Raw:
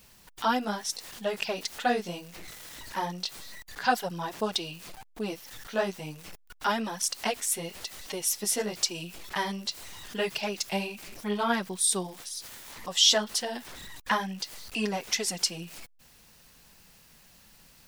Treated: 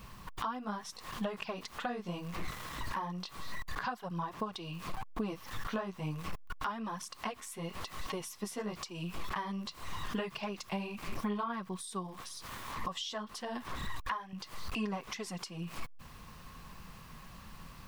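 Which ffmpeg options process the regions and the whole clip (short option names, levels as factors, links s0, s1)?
-filter_complex "[0:a]asettb=1/sr,asplit=3[s0][s1][s2];[s0]atrim=end=13.864[s3];[s1]atrim=start=13.86:end=14.33,asetpts=PTS-STARTPTS,afade=t=in:d=0.004:c=qsin,afade=t=out:st=0.466:d=0.004:c=qsin,equalizer=f=200:t=o:w=0.66:g=-11.5,acompressor=mode=upward:threshold=0.00631:ratio=2.5:attack=3.2:release=140:knee=2.83:detection=peak[s4];[s2]atrim=start=14.326[s5];[s3][s4]acrossfade=d=0.004:c1=hsin:c2=qsin[s6];[s6][s5]acrossfade=d=0.004:c1=qsin:c2=hsin,equalizer=f=1100:w=4.5:g=14.5,acompressor=threshold=0.00891:ratio=6,bass=f=250:g=8,treble=f=4000:g=-9,volume=1.68"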